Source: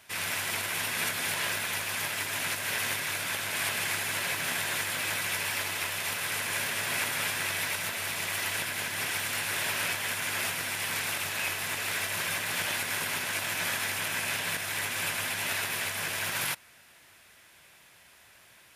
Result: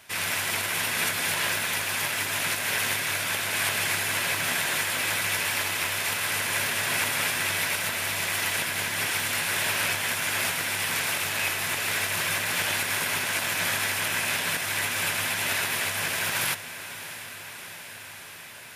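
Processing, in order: echo that smears into a reverb 685 ms, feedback 75%, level -14 dB; trim +4 dB

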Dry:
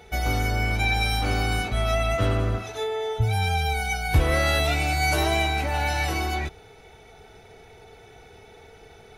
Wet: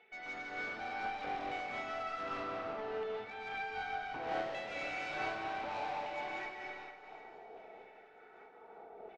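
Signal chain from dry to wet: high-pass 210 Hz 24 dB/octave; tilt EQ -4.5 dB/octave; LFO band-pass saw down 0.66 Hz 640–2600 Hz; valve stage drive 39 dB, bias 0.25; distance through air 130 m; feedback delay 999 ms, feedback 46%, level -23 dB; algorithmic reverb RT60 2.4 s, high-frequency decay 0.95×, pre-delay 100 ms, DRR -1 dB; random flutter of the level, depth 55%; trim +2 dB

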